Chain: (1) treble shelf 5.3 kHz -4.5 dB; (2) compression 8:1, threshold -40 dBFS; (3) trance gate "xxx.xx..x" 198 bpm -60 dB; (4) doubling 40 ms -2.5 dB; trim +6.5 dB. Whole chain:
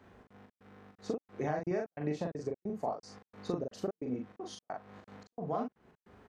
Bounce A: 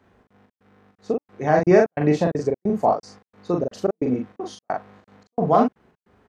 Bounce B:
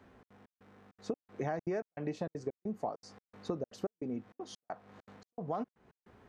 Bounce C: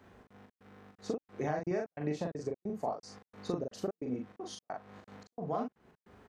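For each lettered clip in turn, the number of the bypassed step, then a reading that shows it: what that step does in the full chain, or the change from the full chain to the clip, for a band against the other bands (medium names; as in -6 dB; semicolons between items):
2, mean gain reduction 13.0 dB; 4, momentary loudness spread change -6 LU; 1, 8 kHz band +2.5 dB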